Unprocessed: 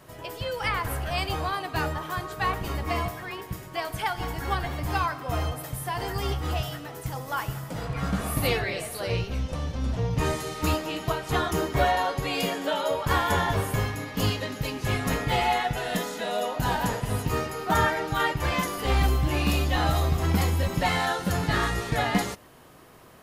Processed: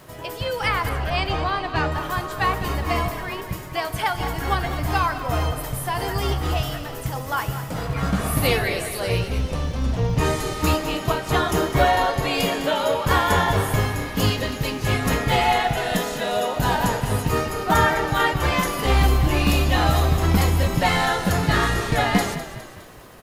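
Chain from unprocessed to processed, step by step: crackle 290 per s -47 dBFS; 0.89–1.92 s: low-pass 4.7 kHz 12 dB/octave; frequency-shifting echo 205 ms, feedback 50%, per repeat -35 Hz, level -12 dB; trim +5 dB

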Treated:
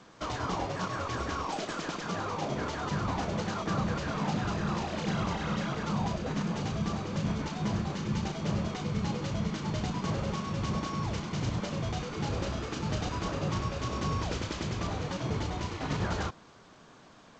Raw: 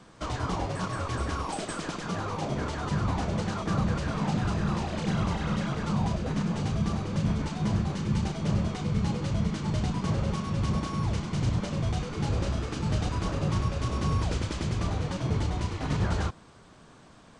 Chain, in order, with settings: bass shelf 140 Hz -9.5 dB; G.722 64 kbps 16 kHz

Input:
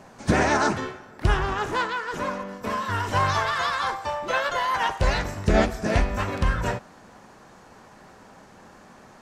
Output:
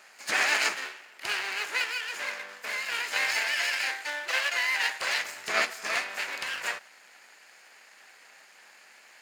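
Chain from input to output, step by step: comb filter that takes the minimum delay 0.43 ms; high-pass 1.2 kHz 12 dB/octave; trim +2.5 dB

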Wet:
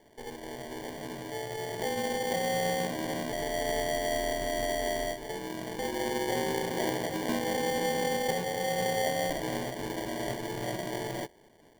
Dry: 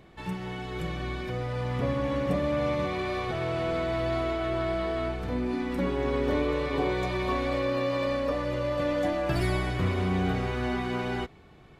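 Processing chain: mistuned SSB -52 Hz 420–2600 Hz; sample-rate reducer 1.3 kHz, jitter 0%

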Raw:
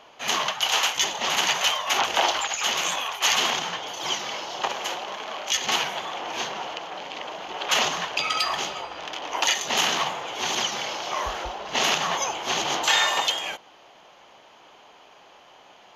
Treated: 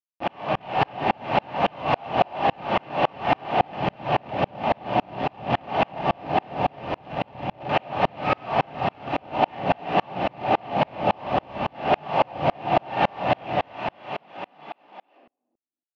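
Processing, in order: one-bit delta coder 32 kbps, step -34 dBFS; peaking EQ 840 Hz -3.5 dB 1.7 oct; Schmitt trigger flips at -29.5 dBFS; frequency-shifting echo 325 ms, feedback 57%, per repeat +48 Hz, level -17 dB; level rider gain up to 11 dB; overdrive pedal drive 26 dB, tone 1 kHz, clips at -11 dBFS; cabinet simulation 120–4600 Hz, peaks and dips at 120 Hz +6 dB, 260 Hz -3 dB, 380 Hz -5 dB, 750 Hz +10 dB, 1.4 kHz -4 dB, 2.7 kHz +9 dB; simulated room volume 930 m³, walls furnished, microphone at 2.6 m; sawtooth tremolo in dB swelling 3.6 Hz, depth 37 dB; trim -2 dB

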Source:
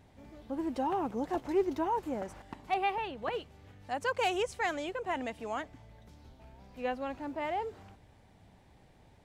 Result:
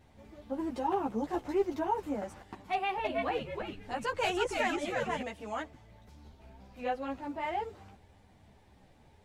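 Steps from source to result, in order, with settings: 2.72–5.22 s: frequency-shifting echo 321 ms, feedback 38%, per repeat -120 Hz, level -4 dB; three-phase chorus; trim +3 dB

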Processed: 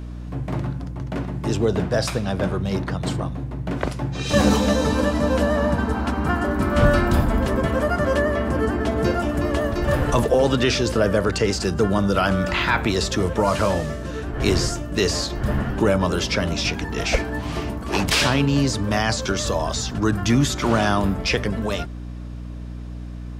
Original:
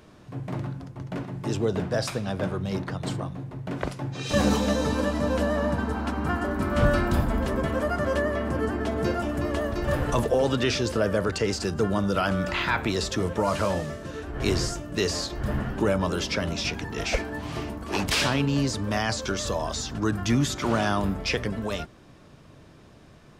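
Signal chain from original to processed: hum 60 Hz, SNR 11 dB; trim +5 dB

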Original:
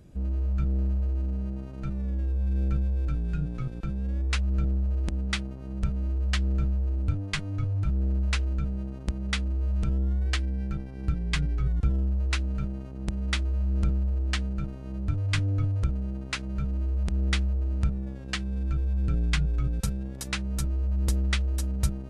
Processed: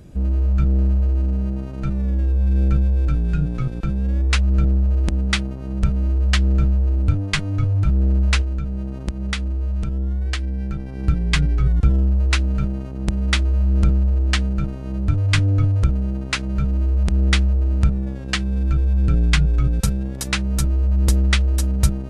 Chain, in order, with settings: 8.41–11.00 s: compression 4:1, threshold -30 dBFS, peak gain reduction 8 dB; trim +9 dB

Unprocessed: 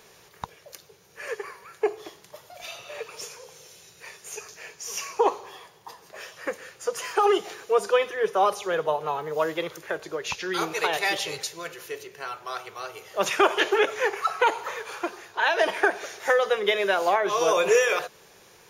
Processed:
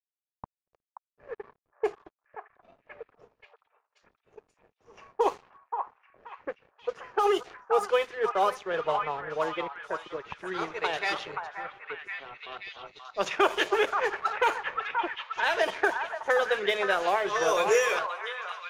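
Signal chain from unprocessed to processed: crossover distortion -39.5 dBFS; level-controlled noise filter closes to 610 Hz, open at -18.5 dBFS; repeats whose band climbs or falls 529 ms, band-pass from 1.1 kHz, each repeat 0.7 oct, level -2.5 dB; trim -3 dB

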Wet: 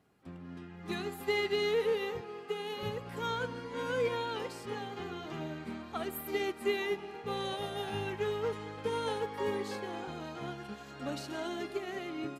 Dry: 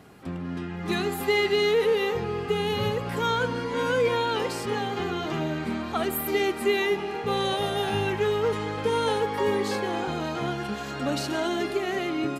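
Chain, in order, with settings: 2.21–2.83 s: high-pass 290 Hz 12 dB/octave; upward expansion 1.5:1, over -44 dBFS; trim -7 dB

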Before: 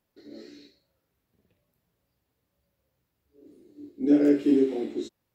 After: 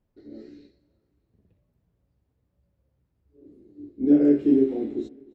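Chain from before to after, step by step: tilt EQ -3.5 dB/octave; on a send: feedback delay 298 ms, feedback 45%, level -23.5 dB; on the sum: trim -3.5 dB

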